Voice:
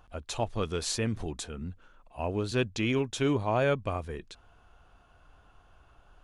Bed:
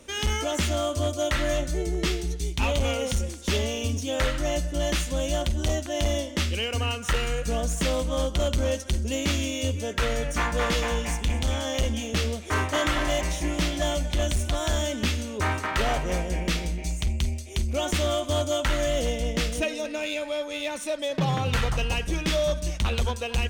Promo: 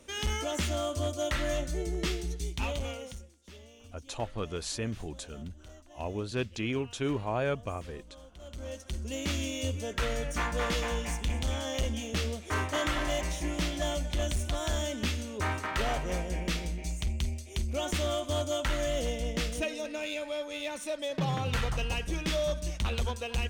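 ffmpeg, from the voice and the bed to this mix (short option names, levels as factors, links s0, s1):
-filter_complex "[0:a]adelay=3800,volume=0.631[s0];[1:a]volume=5.31,afade=t=out:st=2.42:d=0.87:silence=0.1,afade=t=in:st=8.39:d=1.05:silence=0.1[s1];[s0][s1]amix=inputs=2:normalize=0"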